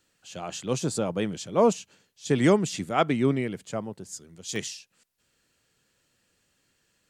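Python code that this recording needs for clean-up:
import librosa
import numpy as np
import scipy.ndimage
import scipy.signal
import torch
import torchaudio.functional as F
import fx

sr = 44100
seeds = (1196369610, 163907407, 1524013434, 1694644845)

y = fx.fix_interpolate(x, sr, at_s=(4.56,), length_ms=2.8)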